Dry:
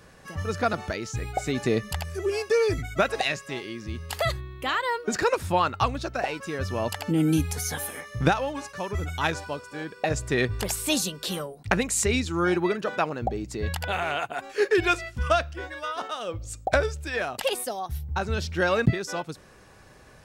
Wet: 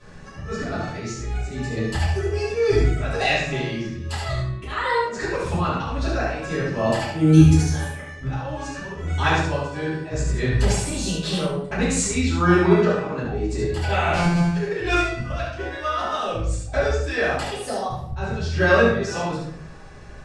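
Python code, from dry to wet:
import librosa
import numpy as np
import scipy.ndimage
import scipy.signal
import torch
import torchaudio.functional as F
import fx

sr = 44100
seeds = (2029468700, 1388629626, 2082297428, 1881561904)

y = fx.sample_sort(x, sr, block=256, at=(14.13, 14.54))
y = scipy.signal.sosfilt(scipy.signal.butter(4, 8400.0, 'lowpass', fs=sr, output='sos'), y)
y = fx.low_shelf(y, sr, hz=200.0, db=5.0)
y = fx.level_steps(y, sr, step_db=12, at=(7.61, 8.61))
y = fx.auto_swell(y, sr, attack_ms=202.0)
y = y + 10.0 ** (-4.5 / 20.0) * np.pad(y, (int(71 * sr / 1000.0), 0))[:len(y)]
y = fx.room_shoebox(y, sr, seeds[0], volume_m3=98.0, walls='mixed', distance_m=2.9)
y = F.gain(torch.from_numpy(y), -7.0).numpy()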